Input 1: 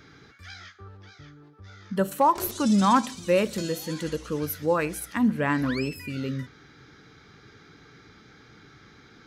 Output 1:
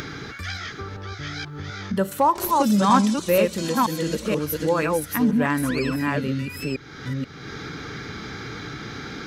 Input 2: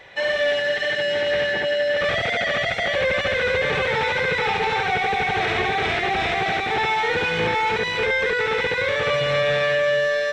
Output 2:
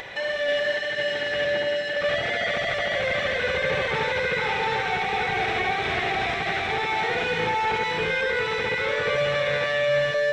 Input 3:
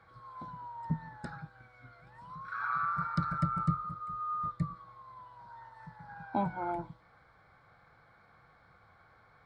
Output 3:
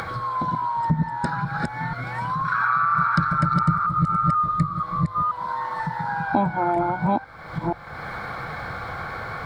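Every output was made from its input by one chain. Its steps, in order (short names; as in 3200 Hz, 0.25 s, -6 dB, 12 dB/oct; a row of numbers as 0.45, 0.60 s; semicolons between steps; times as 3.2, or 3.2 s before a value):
reverse delay 0.483 s, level -2 dB; upward compressor, threshold -22 dBFS; notches 50/100 Hz; match loudness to -24 LUFS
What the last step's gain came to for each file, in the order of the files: +1.5, -5.0, +8.0 dB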